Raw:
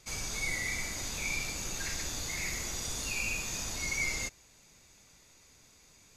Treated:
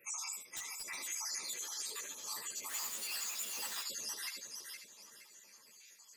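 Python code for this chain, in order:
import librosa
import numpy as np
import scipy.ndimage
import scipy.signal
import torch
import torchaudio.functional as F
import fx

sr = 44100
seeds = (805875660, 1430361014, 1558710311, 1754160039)

y = fx.spec_dropout(x, sr, seeds[0], share_pct=78)
y = fx.over_compress(y, sr, threshold_db=-46.0, ratio=-1.0)
y = fx.high_shelf(y, sr, hz=11000.0, db=9.5)
y = y + 10.0 ** (-8.5 / 20.0) * np.pad(y, (int(75 * sr / 1000.0), 0))[:len(y)]
y = fx.ring_mod(y, sr, carrier_hz=440.0, at=(1.55, 2.05))
y = fx.notch_comb(y, sr, f0_hz=740.0)
y = fx.echo_feedback(y, sr, ms=467, feedback_pct=30, wet_db=-5.0)
y = fx.quant_dither(y, sr, seeds[1], bits=8, dither='triangular', at=(2.68, 3.82), fade=0.02)
y = scipy.signal.sosfilt(scipy.signal.butter(2, 260.0, 'highpass', fs=sr, output='sos'), y)
y = fx.low_shelf(y, sr, hz=420.0, db=-9.0)
y = fx.overflow_wrap(y, sr, gain_db=35.5, at=(0.41, 1.0))
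y = fx.ensemble(y, sr)
y = F.gain(torch.from_numpy(y), 5.0).numpy()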